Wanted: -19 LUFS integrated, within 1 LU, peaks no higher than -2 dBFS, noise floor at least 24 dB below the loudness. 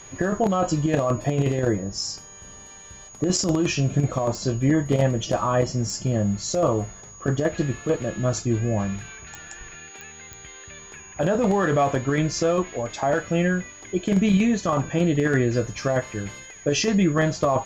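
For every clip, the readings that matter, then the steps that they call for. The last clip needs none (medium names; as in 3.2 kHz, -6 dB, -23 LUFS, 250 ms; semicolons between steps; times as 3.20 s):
clicks found 5; steady tone 6.7 kHz; tone level -43 dBFS; loudness -23.5 LUFS; peak level -10.5 dBFS; loudness target -19.0 LUFS
-> de-click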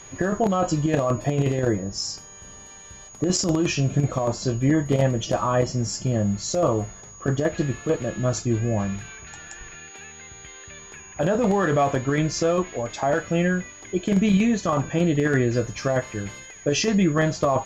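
clicks found 0; steady tone 6.7 kHz; tone level -43 dBFS
-> band-stop 6.7 kHz, Q 30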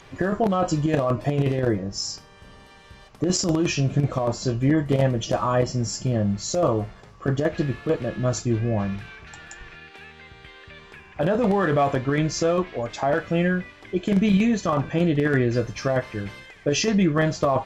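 steady tone not found; loudness -23.5 LUFS; peak level -10.5 dBFS; loudness target -19.0 LUFS
-> trim +4.5 dB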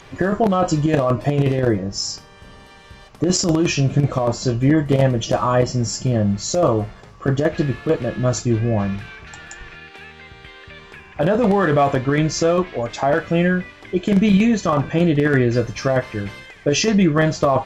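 loudness -19.0 LUFS; peak level -6.0 dBFS; noise floor -44 dBFS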